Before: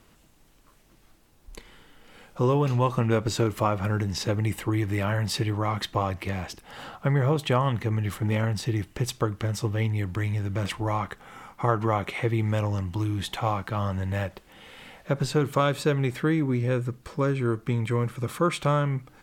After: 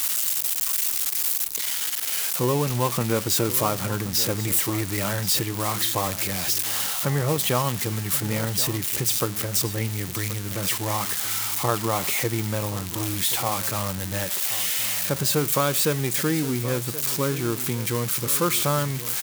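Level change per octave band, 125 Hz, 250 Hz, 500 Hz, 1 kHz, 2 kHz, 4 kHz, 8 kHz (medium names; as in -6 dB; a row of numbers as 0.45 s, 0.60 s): -2.5 dB, 0.0 dB, 0.0 dB, +0.5 dB, +3.5 dB, +9.5 dB, +17.5 dB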